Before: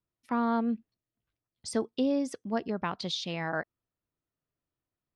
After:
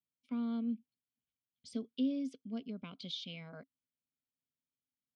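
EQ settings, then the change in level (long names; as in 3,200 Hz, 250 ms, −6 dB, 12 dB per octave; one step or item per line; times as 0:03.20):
phaser with its sweep stopped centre 760 Hz, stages 4
dynamic equaliser 940 Hz, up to +8 dB, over −50 dBFS, Q 4.4
formant filter i
+10.5 dB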